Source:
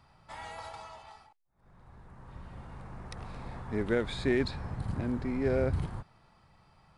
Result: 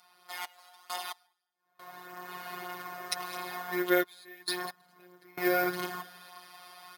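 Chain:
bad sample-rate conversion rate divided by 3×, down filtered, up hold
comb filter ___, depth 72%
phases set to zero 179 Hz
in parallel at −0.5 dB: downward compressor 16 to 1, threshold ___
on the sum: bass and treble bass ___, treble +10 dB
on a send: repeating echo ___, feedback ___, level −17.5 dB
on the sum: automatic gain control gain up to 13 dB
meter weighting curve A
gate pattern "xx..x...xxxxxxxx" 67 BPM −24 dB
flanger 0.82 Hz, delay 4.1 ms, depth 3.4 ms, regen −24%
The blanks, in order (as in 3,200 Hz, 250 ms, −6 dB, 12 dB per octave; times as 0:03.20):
2.8 ms, −39 dBFS, −7 dB, 207 ms, 28%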